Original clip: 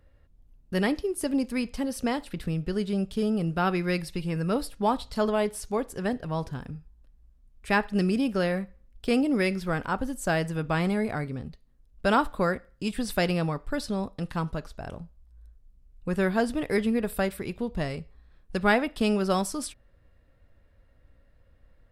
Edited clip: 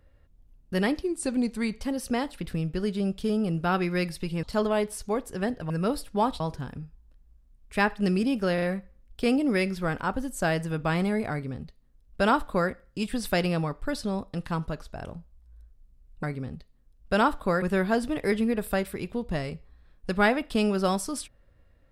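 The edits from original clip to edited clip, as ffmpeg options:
-filter_complex "[0:a]asplit=10[s0][s1][s2][s3][s4][s5][s6][s7][s8][s9];[s0]atrim=end=1.024[s10];[s1]atrim=start=1.02:end=1.74,asetpts=PTS-STARTPTS,asetrate=40131,aresample=44100,atrim=end_sample=34892,asetpts=PTS-STARTPTS[s11];[s2]atrim=start=1.736:end=4.362[s12];[s3]atrim=start=5.058:end=6.332[s13];[s4]atrim=start=4.358:end=5.062[s14];[s5]atrim=start=6.328:end=8.512[s15];[s6]atrim=start=8.468:end=8.512[s16];[s7]atrim=start=8.468:end=16.082[s17];[s8]atrim=start=11.158:end=12.552[s18];[s9]atrim=start=16.078[s19];[s10][s11]acrossfade=d=0.004:c1=hsin:c2=hsin[s20];[s20][s12]acrossfade=d=0.004:c1=hsin:c2=hsin[s21];[s21][s13]acrossfade=d=0.004:c1=hsin:c2=hsin[s22];[s22][s14]acrossfade=d=0.004:c1=hsin:c2=hsin[s23];[s23][s15]acrossfade=d=0.004:c1=hsin:c2=hsin[s24];[s24][s16]acrossfade=d=0.004:c1=hsin:c2=hsin[s25];[s25][s17]acrossfade=d=0.004:c1=hsin:c2=hsin[s26];[s26][s18]acrossfade=d=0.004:c1=hsin:c2=hsin[s27];[s27][s19]acrossfade=d=0.004:c1=hsin:c2=hsin"

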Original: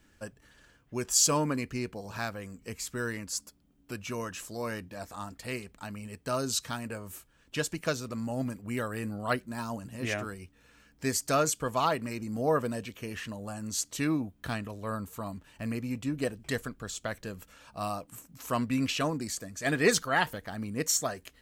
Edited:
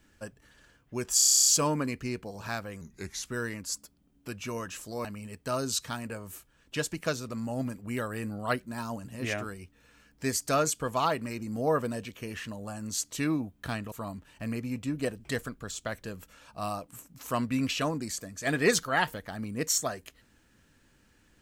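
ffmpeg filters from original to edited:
-filter_complex "[0:a]asplit=15[s0][s1][s2][s3][s4][s5][s6][s7][s8][s9][s10][s11][s12][s13][s14];[s0]atrim=end=1.192[s15];[s1]atrim=start=1.158:end=1.192[s16];[s2]atrim=start=1.158:end=1.192[s17];[s3]atrim=start=1.158:end=1.192[s18];[s4]atrim=start=1.158:end=1.192[s19];[s5]atrim=start=1.158:end=1.192[s20];[s6]atrim=start=1.158:end=1.192[s21];[s7]atrim=start=1.158:end=1.192[s22];[s8]atrim=start=1.158:end=1.192[s23];[s9]atrim=start=1.158:end=1.192[s24];[s10]atrim=start=1.158:end=2.514[s25];[s11]atrim=start=2.51:end=2.89,asetpts=PTS-STARTPTS,asetrate=37485,aresample=44100,atrim=end_sample=19715,asetpts=PTS-STARTPTS[s26];[s12]atrim=start=2.886:end=4.682[s27];[s13]atrim=start=5.848:end=14.722[s28];[s14]atrim=start=15.108[s29];[s15][s16]acrossfade=d=0.004:c1=hsin:c2=hsin[s30];[s30][s17]acrossfade=d=0.004:c1=hsin:c2=hsin[s31];[s31][s18]acrossfade=d=0.004:c1=hsin:c2=hsin[s32];[s32][s19]acrossfade=d=0.004:c1=hsin:c2=hsin[s33];[s33][s20]acrossfade=d=0.004:c1=hsin:c2=hsin[s34];[s34][s21]acrossfade=d=0.004:c1=hsin:c2=hsin[s35];[s35][s22]acrossfade=d=0.004:c1=hsin:c2=hsin[s36];[s36][s23]acrossfade=d=0.004:c1=hsin:c2=hsin[s37];[s37][s24]acrossfade=d=0.004:c1=hsin:c2=hsin[s38];[s38][s25]acrossfade=d=0.004:c1=hsin:c2=hsin[s39];[s39][s26]acrossfade=d=0.004:c1=hsin:c2=hsin[s40];[s40][s27]acrossfade=d=0.004:c1=hsin:c2=hsin[s41];[s41][s28]acrossfade=d=0.004:c1=hsin:c2=hsin[s42];[s42][s29]acrossfade=d=0.004:c1=hsin:c2=hsin"

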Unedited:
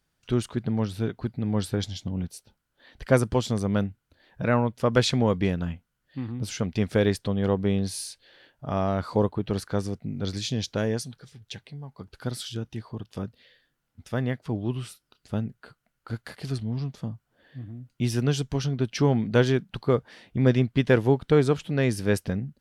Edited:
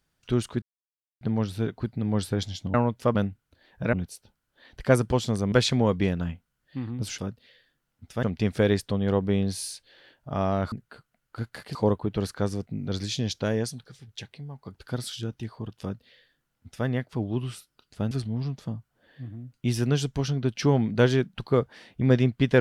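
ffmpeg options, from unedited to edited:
-filter_complex "[0:a]asplit=11[s0][s1][s2][s3][s4][s5][s6][s7][s8][s9][s10];[s0]atrim=end=0.62,asetpts=PTS-STARTPTS,afade=t=out:st=0.616:d=0.004:c=hsin,apad=pad_dur=0.59[s11];[s1]atrim=start=0.62:end=2.152,asetpts=PTS-STARTPTS,afade=t=in:d=0.004:c=hsin[s12];[s2]atrim=start=4.518:end=4.932[s13];[s3]atrim=start=3.738:end=4.522[s14];[s4]atrim=start=2.148:end=3.742[s15];[s5]atrim=start=4.928:end=6.592[s16];[s6]atrim=start=13.138:end=14.192[s17];[s7]atrim=start=6.588:end=9.082[s18];[s8]atrim=start=15.438:end=16.472[s19];[s9]atrim=start=9.078:end=15.442[s20];[s10]atrim=start=16.468[s21];[s11][s12]concat=n=2:v=0:a=1[s22];[s22][s13]acrossfade=d=0.004:c1=hsin:c2=hsin[s23];[s23][s14]acrossfade=d=0.004:c1=hsin:c2=hsin[s24];[s24][s15]acrossfade=d=0.004:c1=hsin:c2=hsin[s25];[s25][s16]acrossfade=d=0.004:c1=hsin:c2=hsin[s26];[s26][s17]acrossfade=d=0.004:c1=hsin:c2=hsin[s27];[s27][s18]acrossfade=d=0.004:c1=hsin:c2=hsin[s28];[s28][s19]acrossfade=d=0.004:c1=hsin:c2=hsin[s29];[s29][s20]acrossfade=d=0.004:c1=hsin:c2=hsin[s30];[s30][s21]acrossfade=d=0.004:c1=hsin:c2=hsin"

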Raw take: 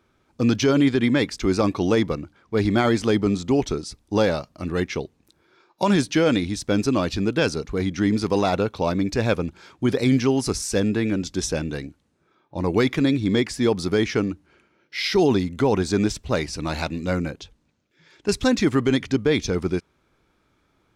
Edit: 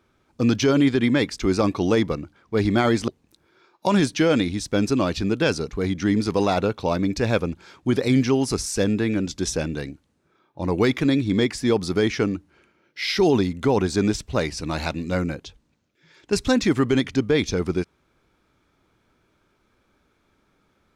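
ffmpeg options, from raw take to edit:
-filter_complex "[0:a]asplit=2[s0][s1];[s0]atrim=end=3.082[s2];[s1]atrim=start=5.038[s3];[s2][s3]acrossfade=d=0.004:c1=hsin:c2=hsin"

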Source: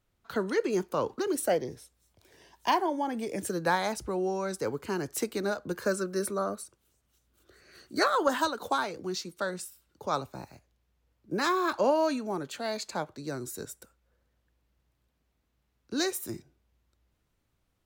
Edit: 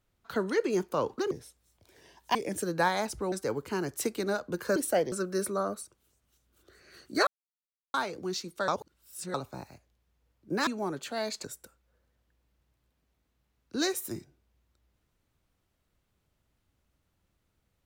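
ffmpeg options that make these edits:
-filter_complex "[0:a]asplit=12[s0][s1][s2][s3][s4][s5][s6][s7][s8][s9][s10][s11];[s0]atrim=end=1.312[s12];[s1]atrim=start=1.668:end=2.712[s13];[s2]atrim=start=3.218:end=4.192[s14];[s3]atrim=start=4.488:end=5.932[s15];[s4]atrim=start=1.308:end=1.672[s16];[s5]atrim=start=5.928:end=8.08,asetpts=PTS-STARTPTS,afade=t=out:st=2.148:d=0.004:c=hsin[s17];[s6]atrim=start=8.08:end=8.75,asetpts=PTS-STARTPTS,volume=0[s18];[s7]atrim=start=8.75:end=9.492,asetpts=PTS-STARTPTS,afade=t=in:d=0.004:c=hsin[s19];[s8]atrim=start=9.488:end=10.152,asetpts=PTS-STARTPTS,areverse[s20];[s9]atrim=start=10.148:end=11.482[s21];[s10]atrim=start=12.148:end=12.922[s22];[s11]atrim=start=13.618[s23];[s12][s13]acrossfade=d=0.004:c1=hsin:c2=hsin[s24];[s24][s14]acrossfade=d=0.004:c1=hsin:c2=hsin[s25];[s25][s15]acrossfade=d=0.004:c1=hsin:c2=hsin[s26];[s26][s16]acrossfade=d=0.004:c1=hsin:c2=hsin[s27];[s17][s18][s19]concat=n=3:v=0:a=1[s28];[s27][s28]acrossfade=d=0.004:c1=hsin:c2=hsin[s29];[s29][s20]acrossfade=d=0.004:c1=hsin:c2=hsin[s30];[s30][s21]acrossfade=d=0.004:c1=hsin:c2=hsin[s31];[s31][s22]acrossfade=d=0.004:c1=hsin:c2=hsin[s32];[s32][s23]acrossfade=d=0.004:c1=hsin:c2=hsin"

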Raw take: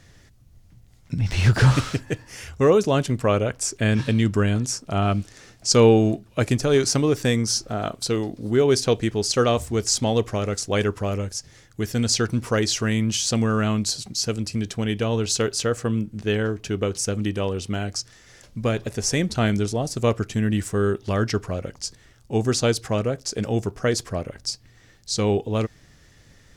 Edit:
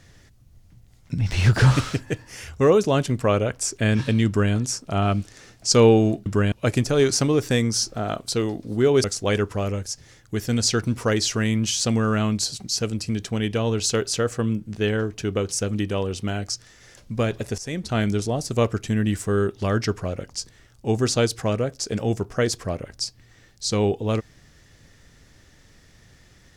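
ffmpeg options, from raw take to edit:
-filter_complex "[0:a]asplit=5[s0][s1][s2][s3][s4];[s0]atrim=end=6.262[s5];[s1]atrim=start=4.268:end=4.532[s6];[s2]atrim=start=6.258:end=8.782[s7];[s3]atrim=start=10.498:end=19.04,asetpts=PTS-STARTPTS,afade=t=out:st=8.538:d=0.004:c=hsin:silence=0.158489[s8];[s4]atrim=start=19.04,asetpts=PTS-STARTPTS,afade=t=in:d=0.7:c=qsin:silence=0.158489[s9];[s5][s6]acrossfade=d=0.004:c1=hsin:c2=hsin[s10];[s10][s7]acrossfade=d=0.004:c1=hsin:c2=hsin[s11];[s8][s9]concat=n=2:v=0:a=1[s12];[s11][s12]acrossfade=d=0.004:c1=hsin:c2=hsin"

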